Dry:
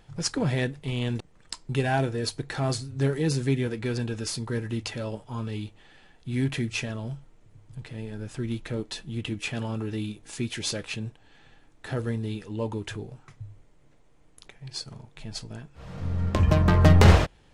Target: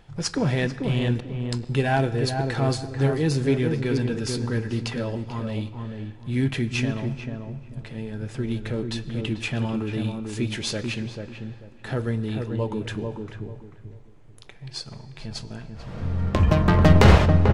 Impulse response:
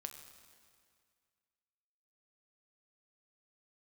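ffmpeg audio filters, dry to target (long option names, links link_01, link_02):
-filter_complex "[0:a]asplit=2[link_01][link_02];[link_02]adelay=441,lowpass=frequency=990:poles=1,volume=-4dB,asplit=2[link_03][link_04];[link_04]adelay=441,lowpass=frequency=990:poles=1,volume=0.27,asplit=2[link_05][link_06];[link_06]adelay=441,lowpass=frequency=990:poles=1,volume=0.27,asplit=2[link_07][link_08];[link_08]adelay=441,lowpass=frequency=990:poles=1,volume=0.27[link_09];[link_01][link_03][link_05][link_07][link_09]amix=inputs=5:normalize=0,asplit=2[link_10][link_11];[1:a]atrim=start_sample=2205,lowpass=5800[link_12];[link_11][link_12]afir=irnorm=-1:irlink=0,volume=-0.5dB[link_13];[link_10][link_13]amix=inputs=2:normalize=0,volume=-1dB"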